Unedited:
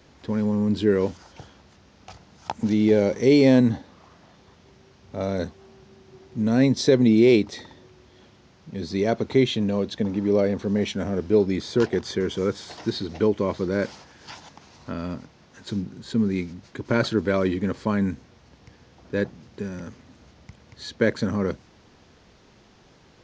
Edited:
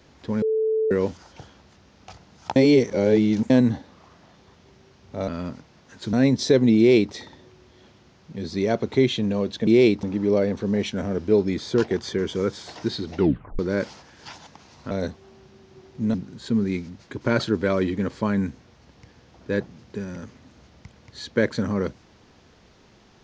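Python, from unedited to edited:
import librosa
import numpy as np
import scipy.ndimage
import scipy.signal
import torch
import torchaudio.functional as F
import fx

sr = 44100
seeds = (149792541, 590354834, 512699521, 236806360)

y = fx.edit(x, sr, fx.bleep(start_s=0.42, length_s=0.49, hz=439.0, db=-19.0),
    fx.reverse_span(start_s=2.56, length_s=0.94),
    fx.swap(start_s=5.28, length_s=1.23, other_s=14.93, other_length_s=0.85),
    fx.duplicate(start_s=7.15, length_s=0.36, to_s=10.05),
    fx.tape_stop(start_s=13.19, length_s=0.42), tone=tone)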